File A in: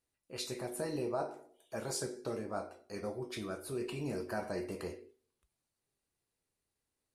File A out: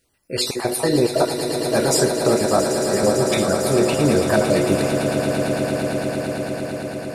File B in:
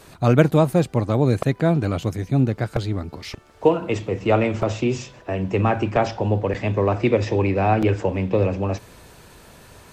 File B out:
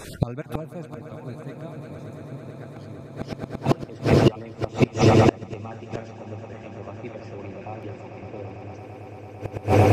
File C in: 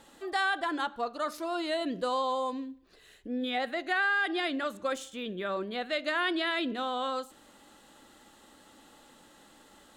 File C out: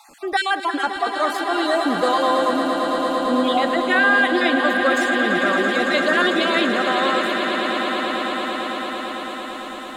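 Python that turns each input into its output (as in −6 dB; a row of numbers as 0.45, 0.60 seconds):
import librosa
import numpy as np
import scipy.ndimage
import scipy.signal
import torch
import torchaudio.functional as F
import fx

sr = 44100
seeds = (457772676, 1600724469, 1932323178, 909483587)

y = fx.spec_dropout(x, sr, seeds[0], share_pct=30)
y = fx.echo_swell(y, sr, ms=112, loudest=8, wet_db=-11)
y = fx.gate_flip(y, sr, shuts_db=-13.0, range_db=-27)
y = y * 10.0 ** (-3 / 20.0) / np.max(np.abs(y))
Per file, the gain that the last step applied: +20.0, +8.5, +11.0 decibels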